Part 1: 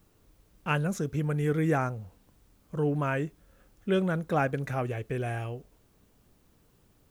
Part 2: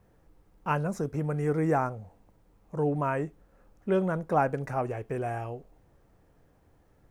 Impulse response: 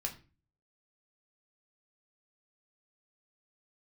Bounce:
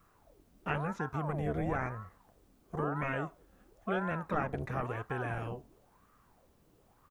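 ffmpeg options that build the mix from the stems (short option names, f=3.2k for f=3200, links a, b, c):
-filter_complex "[0:a]acrossover=split=4300[a][b];[b]acompressor=threshold=-59dB:ratio=4:attack=1:release=60[c];[a][c]amix=inputs=2:normalize=0,volume=-5dB[d];[1:a]lowpass=f=1.6k:w=0.5412,lowpass=f=1.6k:w=1.3066,aeval=exprs='val(0)*sin(2*PI*720*n/s+720*0.7/0.98*sin(2*PI*0.98*n/s))':c=same,volume=-1,adelay=0.5,volume=-6dB,asplit=2[e][f];[f]volume=-12dB[g];[2:a]atrim=start_sample=2205[h];[g][h]afir=irnorm=-1:irlink=0[i];[d][e][i]amix=inputs=3:normalize=0,acompressor=threshold=-32dB:ratio=2"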